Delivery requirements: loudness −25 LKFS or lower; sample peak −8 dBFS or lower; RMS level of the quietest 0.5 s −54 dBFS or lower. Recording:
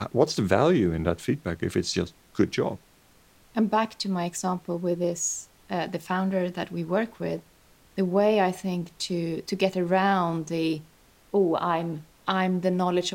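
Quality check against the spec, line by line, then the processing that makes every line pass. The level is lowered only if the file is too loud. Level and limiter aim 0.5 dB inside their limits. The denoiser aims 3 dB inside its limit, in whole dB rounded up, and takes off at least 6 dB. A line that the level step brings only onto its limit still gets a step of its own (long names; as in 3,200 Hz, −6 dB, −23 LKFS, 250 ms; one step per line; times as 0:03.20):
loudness −26.5 LKFS: in spec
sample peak −7.0 dBFS: out of spec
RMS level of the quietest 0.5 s −58 dBFS: in spec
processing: brickwall limiter −8.5 dBFS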